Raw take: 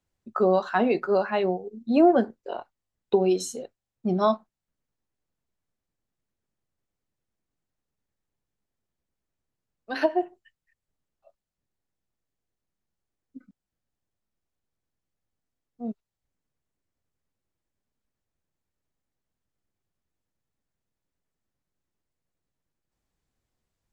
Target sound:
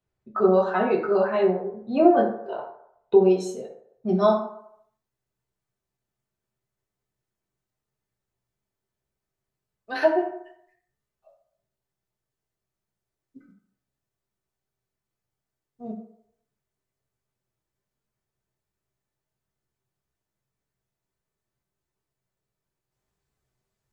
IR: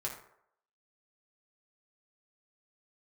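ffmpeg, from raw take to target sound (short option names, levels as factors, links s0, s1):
-filter_complex "[0:a]asetnsamples=n=441:p=0,asendcmd='4.09 highshelf g 2',highshelf=f=4900:g=-11[s0];[1:a]atrim=start_sample=2205[s1];[s0][s1]afir=irnorm=-1:irlink=0"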